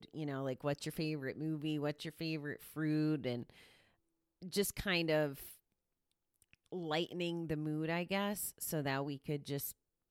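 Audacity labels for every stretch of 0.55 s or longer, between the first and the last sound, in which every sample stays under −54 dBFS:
3.680000	4.420000	silence
5.560000	6.420000	silence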